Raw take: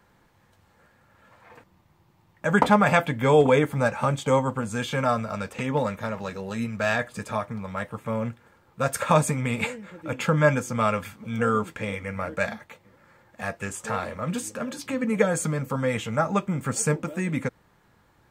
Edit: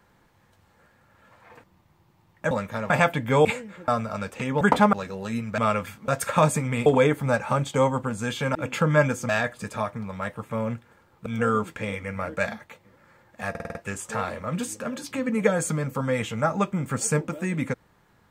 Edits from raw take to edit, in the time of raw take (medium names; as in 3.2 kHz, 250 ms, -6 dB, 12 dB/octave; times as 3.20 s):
2.51–2.83 s: swap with 5.80–6.19 s
3.38–5.07 s: swap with 9.59–10.02 s
6.84–8.81 s: swap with 10.76–11.26 s
13.50 s: stutter 0.05 s, 6 plays